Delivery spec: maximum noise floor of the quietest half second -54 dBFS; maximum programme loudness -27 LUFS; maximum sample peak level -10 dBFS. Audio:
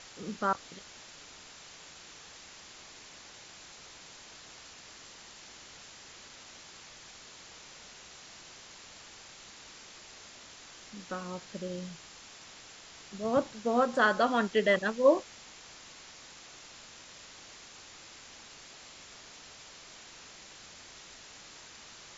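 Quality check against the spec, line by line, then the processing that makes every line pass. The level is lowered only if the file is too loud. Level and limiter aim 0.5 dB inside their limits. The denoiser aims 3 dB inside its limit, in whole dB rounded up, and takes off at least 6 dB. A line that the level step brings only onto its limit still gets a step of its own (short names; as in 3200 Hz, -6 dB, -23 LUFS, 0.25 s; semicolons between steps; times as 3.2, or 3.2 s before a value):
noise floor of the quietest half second -51 dBFS: fail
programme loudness -29.5 LUFS: OK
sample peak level -11.5 dBFS: OK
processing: denoiser 6 dB, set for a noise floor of -51 dBFS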